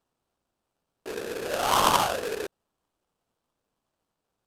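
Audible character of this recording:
aliases and images of a low sample rate 2,100 Hz, jitter 20%
SBC

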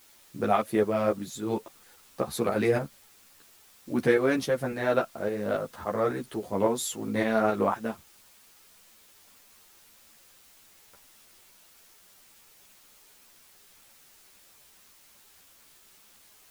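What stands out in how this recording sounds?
tremolo saw up 3.6 Hz, depth 50%
a quantiser's noise floor 10 bits, dither triangular
a shimmering, thickened sound

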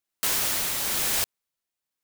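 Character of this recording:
tremolo triangle 1 Hz, depth 40%

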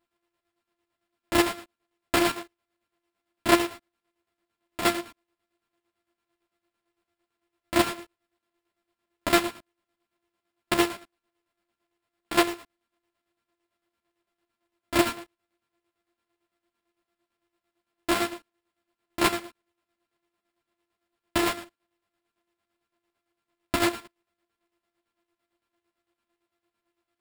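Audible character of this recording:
a buzz of ramps at a fixed pitch in blocks of 128 samples
chopped level 8.9 Hz, depth 60%, duty 50%
aliases and images of a low sample rate 6,100 Hz, jitter 0%
a shimmering, thickened sound

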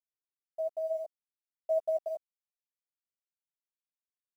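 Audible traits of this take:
a quantiser's noise floor 10 bits, dither none
sample-and-hold tremolo 2.5 Hz
a shimmering, thickened sound

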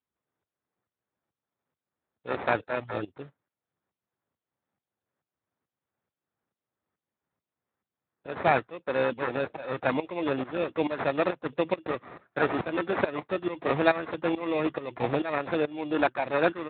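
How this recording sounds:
tremolo saw up 2.3 Hz, depth 85%
aliases and images of a low sample rate 3,100 Hz, jitter 0%
Speex

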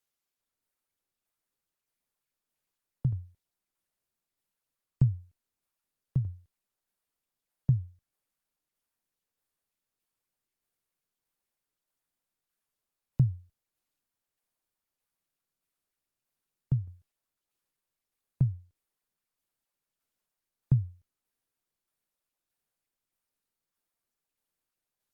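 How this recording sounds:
tremolo saw down 1.6 Hz, depth 50%
Opus

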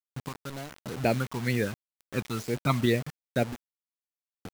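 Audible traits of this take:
phaser sweep stages 12, 2.1 Hz, lowest notch 480–1,200 Hz
sample-and-hold tremolo, depth 85%
a quantiser's noise floor 8 bits, dither none

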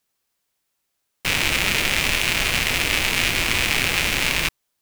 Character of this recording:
background noise floor −76 dBFS
spectral slope −2.0 dB per octave

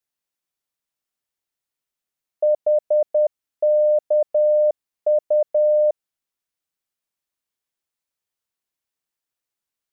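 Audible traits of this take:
background noise floor −87 dBFS
spectral slope +10.0 dB per octave

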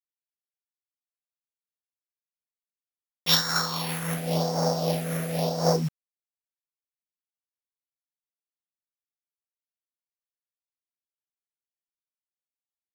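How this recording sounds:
a buzz of ramps at a fixed pitch in blocks of 8 samples
phaser sweep stages 4, 0.92 Hz, lowest notch 800–2,800 Hz
a quantiser's noise floor 8 bits, dither none
amplitude modulation by smooth noise

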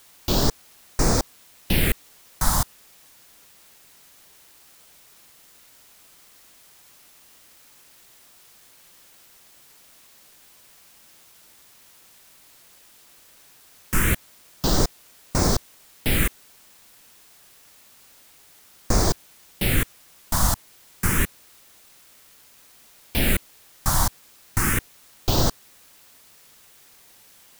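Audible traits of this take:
phaser sweep stages 4, 0.28 Hz, lowest notch 410–3,100 Hz
a quantiser's noise floor 10 bits, dither triangular

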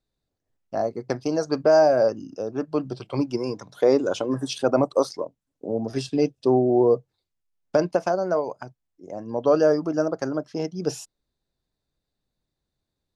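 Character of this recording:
background noise floor −83 dBFS
spectral slope −5.5 dB per octave

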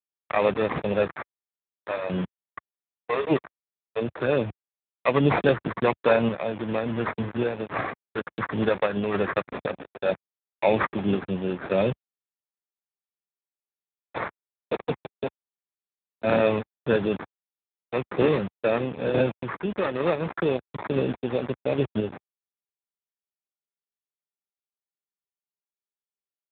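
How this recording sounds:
a quantiser's noise floor 6 bits, dither none
sample-and-hold tremolo
aliases and images of a low sample rate 3,100 Hz, jitter 0%
AMR narrowband

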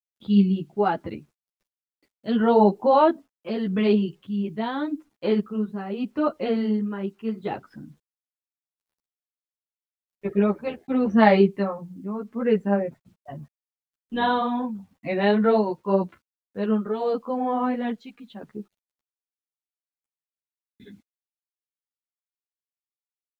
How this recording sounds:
tremolo triangle 0.81 Hz, depth 70%
a quantiser's noise floor 12 bits, dither none
a shimmering, thickened sound

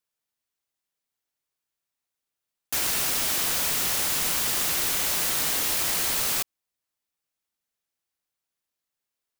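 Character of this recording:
background noise floor −86 dBFS
spectral slope 0.0 dB per octave

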